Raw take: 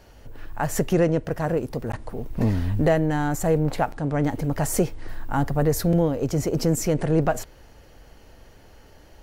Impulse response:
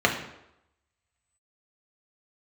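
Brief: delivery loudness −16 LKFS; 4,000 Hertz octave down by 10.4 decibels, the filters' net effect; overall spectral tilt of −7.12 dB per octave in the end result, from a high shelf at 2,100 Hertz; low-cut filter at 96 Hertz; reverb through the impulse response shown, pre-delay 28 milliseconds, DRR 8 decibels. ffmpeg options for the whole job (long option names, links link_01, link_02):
-filter_complex "[0:a]highpass=96,highshelf=frequency=2100:gain=-8,equalizer=frequency=4000:width_type=o:gain=-6,asplit=2[link_01][link_02];[1:a]atrim=start_sample=2205,adelay=28[link_03];[link_02][link_03]afir=irnorm=-1:irlink=0,volume=-25dB[link_04];[link_01][link_04]amix=inputs=2:normalize=0,volume=8dB"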